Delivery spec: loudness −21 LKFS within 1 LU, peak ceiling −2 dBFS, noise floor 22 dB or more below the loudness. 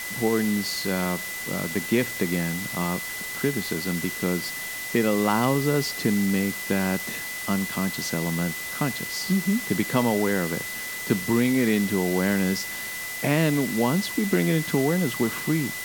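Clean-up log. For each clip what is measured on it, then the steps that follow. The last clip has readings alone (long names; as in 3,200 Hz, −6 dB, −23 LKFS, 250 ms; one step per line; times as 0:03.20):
interfering tone 2,000 Hz; level of the tone −33 dBFS; background noise floor −33 dBFS; target noise floor −47 dBFS; integrated loudness −25.0 LKFS; sample peak −7.5 dBFS; target loudness −21.0 LKFS
→ notch filter 2,000 Hz, Q 30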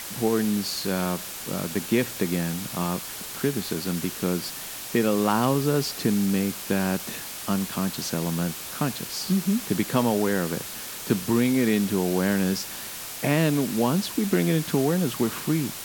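interfering tone none found; background noise floor −36 dBFS; target noise floor −48 dBFS
→ broadband denoise 12 dB, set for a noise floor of −36 dBFS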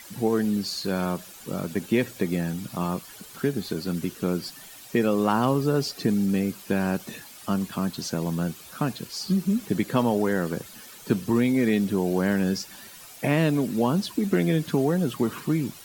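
background noise floor −46 dBFS; target noise floor −48 dBFS
→ broadband denoise 6 dB, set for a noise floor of −46 dBFS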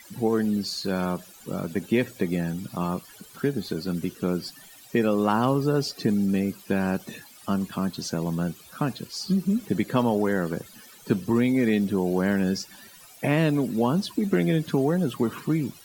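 background noise floor −50 dBFS; integrated loudness −26.0 LKFS; sample peak −8.0 dBFS; target loudness −21.0 LKFS
→ level +5 dB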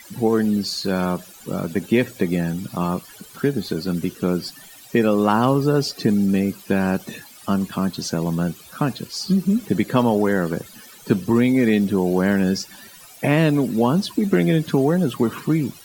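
integrated loudness −21.0 LKFS; sample peak −3.0 dBFS; background noise floor −45 dBFS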